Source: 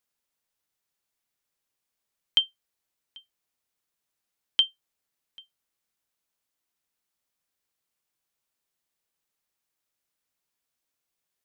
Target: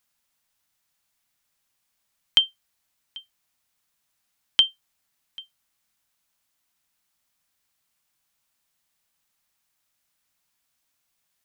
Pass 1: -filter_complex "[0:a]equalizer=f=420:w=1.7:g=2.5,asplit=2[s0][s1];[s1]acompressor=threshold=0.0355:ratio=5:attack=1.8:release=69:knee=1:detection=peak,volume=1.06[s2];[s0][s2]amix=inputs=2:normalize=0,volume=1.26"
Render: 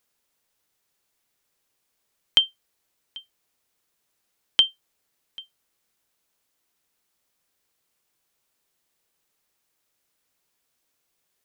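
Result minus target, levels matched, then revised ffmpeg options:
500 Hz band +4.5 dB
-filter_complex "[0:a]equalizer=f=420:w=1.7:g=-9,asplit=2[s0][s1];[s1]acompressor=threshold=0.0355:ratio=5:attack=1.8:release=69:knee=1:detection=peak,volume=1.06[s2];[s0][s2]amix=inputs=2:normalize=0,volume=1.26"

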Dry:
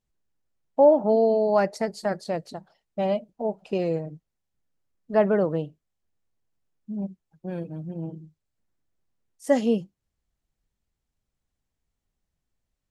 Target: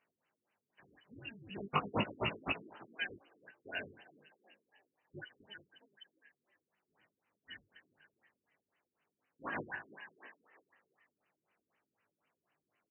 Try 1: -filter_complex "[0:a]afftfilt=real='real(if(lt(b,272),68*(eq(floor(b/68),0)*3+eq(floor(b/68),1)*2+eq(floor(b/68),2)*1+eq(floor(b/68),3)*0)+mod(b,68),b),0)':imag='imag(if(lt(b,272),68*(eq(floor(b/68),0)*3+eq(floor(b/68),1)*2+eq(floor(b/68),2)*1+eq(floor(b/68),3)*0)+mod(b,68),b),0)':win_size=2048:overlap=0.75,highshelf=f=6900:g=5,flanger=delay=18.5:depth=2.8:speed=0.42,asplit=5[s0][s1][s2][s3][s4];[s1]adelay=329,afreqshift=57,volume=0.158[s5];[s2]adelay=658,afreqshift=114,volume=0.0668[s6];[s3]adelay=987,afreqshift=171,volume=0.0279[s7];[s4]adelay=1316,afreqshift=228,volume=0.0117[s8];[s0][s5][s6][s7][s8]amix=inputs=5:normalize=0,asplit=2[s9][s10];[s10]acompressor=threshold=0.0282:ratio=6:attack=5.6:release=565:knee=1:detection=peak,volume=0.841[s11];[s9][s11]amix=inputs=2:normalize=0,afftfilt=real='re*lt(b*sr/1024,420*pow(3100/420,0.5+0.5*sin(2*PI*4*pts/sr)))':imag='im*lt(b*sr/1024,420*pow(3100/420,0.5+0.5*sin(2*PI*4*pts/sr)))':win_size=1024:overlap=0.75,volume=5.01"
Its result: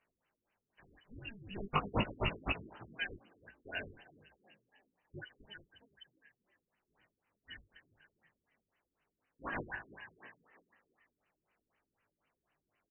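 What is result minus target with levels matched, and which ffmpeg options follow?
125 Hz band +3.0 dB
-filter_complex "[0:a]afftfilt=real='real(if(lt(b,272),68*(eq(floor(b/68),0)*3+eq(floor(b/68),1)*2+eq(floor(b/68),2)*1+eq(floor(b/68),3)*0)+mod(b,68),b),0)':imag='imag(if(lt(b,272),68*(eq(floor(b/68),0)*3+eq(floor(b/68),1)*2+eq(floor(b/68),2)*1+eq(floor(b/68),3)*0)+mod(b,68),b),0)':win_size=2048:overlap=0.75,highpass=130,highshelf=f=6900:g=5,flanger=delay=18.5:depth=2.8:speed=0.42,asplit=5[s0][s1][s2][s3][s4];[s1]adelay=329,afreqshift=57,volume=0.158[s5];[s2]adelay=658,afreqshift=114,volume=0.0668[s6];[s3]adelay=987,afreqshift=171,volume=0.0279[s7];[s4]adelay=1316,afreqshift=228,volume=0.0117[s8];[s0][s5][s6][s7][s8]amix=inputs=5:normalize=0,asplit=2[s9][s10];[s10]acompressor=threshold=0.0282:ratio=6:attack=5.6:release=565:knee=1:detection=peak,volume=0.841[s11];[s9][s11]amix=inputs=2:normalize=0,afftfilt=real='re*lt(b*sr/1024,420*pow(3100/420,0.5+0.5*sin(2*PI*4*pts/sr)))':imag='im*lt(b*sr/1024,420*pow(3100/420,0.5+0.5*sin(2*PI*4*pts/sr)))':win_size=1024:overlap=0.75,volume=5.01"

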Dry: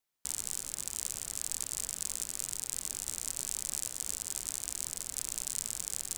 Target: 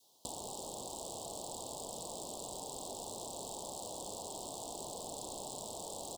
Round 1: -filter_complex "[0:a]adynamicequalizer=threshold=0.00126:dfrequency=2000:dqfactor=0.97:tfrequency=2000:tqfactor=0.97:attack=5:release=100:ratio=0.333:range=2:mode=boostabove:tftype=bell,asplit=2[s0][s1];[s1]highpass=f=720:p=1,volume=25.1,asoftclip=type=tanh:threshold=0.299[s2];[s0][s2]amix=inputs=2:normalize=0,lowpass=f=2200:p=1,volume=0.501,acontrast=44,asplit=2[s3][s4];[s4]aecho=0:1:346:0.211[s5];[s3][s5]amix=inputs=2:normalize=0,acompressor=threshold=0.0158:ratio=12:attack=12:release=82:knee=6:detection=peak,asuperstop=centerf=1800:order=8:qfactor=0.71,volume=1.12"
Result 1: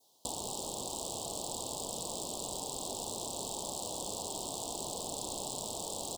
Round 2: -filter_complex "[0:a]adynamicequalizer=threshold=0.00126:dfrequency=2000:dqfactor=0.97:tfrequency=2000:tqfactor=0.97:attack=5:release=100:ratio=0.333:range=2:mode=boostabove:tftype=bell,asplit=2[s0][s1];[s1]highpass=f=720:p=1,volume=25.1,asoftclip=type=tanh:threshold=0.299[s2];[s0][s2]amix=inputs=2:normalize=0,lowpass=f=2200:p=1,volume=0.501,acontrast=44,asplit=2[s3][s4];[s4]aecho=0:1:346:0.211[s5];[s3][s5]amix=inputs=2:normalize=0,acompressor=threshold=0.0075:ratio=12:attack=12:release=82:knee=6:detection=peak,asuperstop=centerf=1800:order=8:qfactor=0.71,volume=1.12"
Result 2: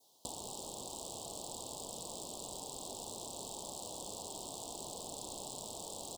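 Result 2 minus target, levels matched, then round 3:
2 kHz band +3.0 dB
-filter_complex "[0:a]adynamicequalizer=threshold=0.00126:dfrequency=690:dqfactor=0.97:tfrequency=690:tqfactor=0.97:attack=5:release=100:ratio=0.333:range=2:mode=boostabove:tftype=bell,asplit=2[s0][s1];[s1]highpass=f=720:p=1,volume=25.1,asoftclip=type=tanh:threshold=0.299[s2];[s0][s2]amix=inputs=2:normalize=0,lowpass=f=2200:p=1,volume=0.501,acontrast=44,asplit=2[s3][s4];[s4]aecho=0:1:346:0.211[s5];[s3][s5]amix=inputs=2:normalize=0,acompressor=threshold=0.0075:ratio=12:attack=12:release=82:knee=6:detection=peak,asuperstop=centerf=1800:order=8:qfactor=0.71,volume=1.12"

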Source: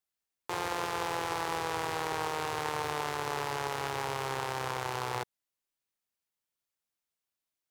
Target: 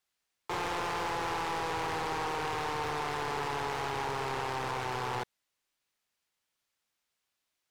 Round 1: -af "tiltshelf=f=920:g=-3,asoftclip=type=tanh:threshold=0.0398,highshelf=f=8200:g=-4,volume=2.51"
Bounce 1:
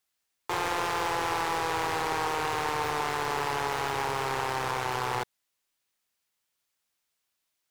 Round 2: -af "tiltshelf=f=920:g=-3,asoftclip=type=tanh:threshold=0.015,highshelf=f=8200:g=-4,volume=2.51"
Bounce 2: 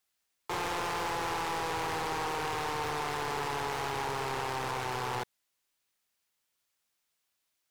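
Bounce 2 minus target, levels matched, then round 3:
8 kHz band +3.0 dB
-af "tiltshelf=f=920:g=-3,asoftclip=type=tanh:threshold=0.015,highshelf=f=8200:g=-12,volume=2.51"

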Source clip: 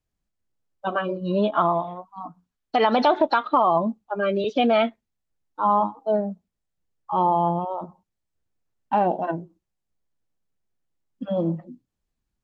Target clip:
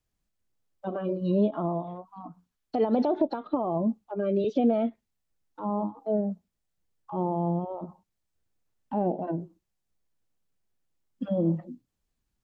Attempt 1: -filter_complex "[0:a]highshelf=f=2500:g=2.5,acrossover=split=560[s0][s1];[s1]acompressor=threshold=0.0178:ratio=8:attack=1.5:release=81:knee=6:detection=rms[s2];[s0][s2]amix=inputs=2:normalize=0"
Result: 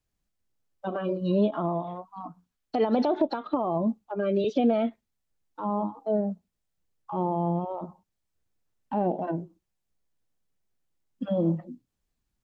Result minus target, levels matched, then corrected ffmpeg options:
compression: peak gain reduction -7 dB
-filter_complex "[0:a]highshelf=f=2500:g=2.5,acrossover=split=560[s0][s1];[s1]acompressor=threshold=0.00708:ratio=8:attack=1.5:release=81:knee=6:detection=rms[s2];[s0][s2]amix=inputs=2:normalize=0"

